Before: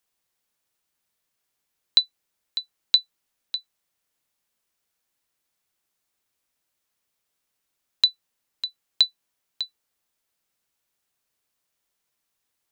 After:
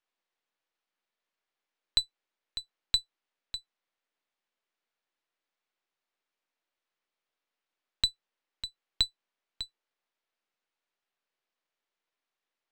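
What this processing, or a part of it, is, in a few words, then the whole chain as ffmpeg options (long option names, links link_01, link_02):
crystal radio: -af "highpass=290,lowpass=3500,aeval=exprs='if(lt(val(0),0),0.447*val(0),val(0))':channel_layout=same,volume=-1.5dB"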